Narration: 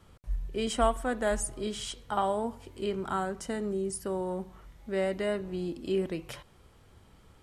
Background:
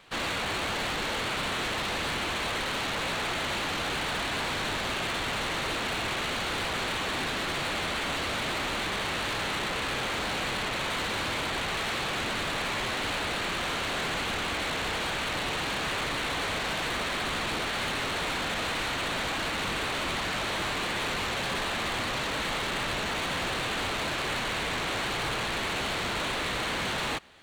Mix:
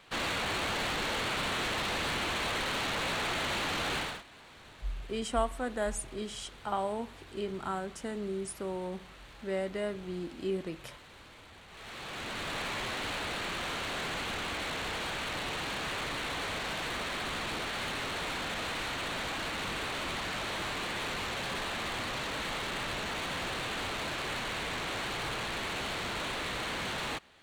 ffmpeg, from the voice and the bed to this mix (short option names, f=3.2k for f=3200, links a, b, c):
-filter_complex "[0:a]adelay=4550,volume=-4dB[a];[1:a]volume=16dB,afade=t=out:st=3.97:d=0.26:silence=0.0891251,afade=t=in:st=11.69:d=0.88:silence=0.125893[b];[a][b]amix=inputs=2:normalize=0"